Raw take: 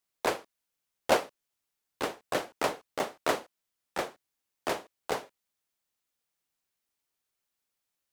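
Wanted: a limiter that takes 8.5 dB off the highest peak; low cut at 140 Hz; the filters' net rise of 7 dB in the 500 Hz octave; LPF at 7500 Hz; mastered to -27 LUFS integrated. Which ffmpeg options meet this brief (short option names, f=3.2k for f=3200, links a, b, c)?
-af "highpass=140,lowpass=7.5k,equalizer=f=500:t=o:g=8.5,volume=4.5dB,alimiter=limit=-9.5dB:level=0:latency=1"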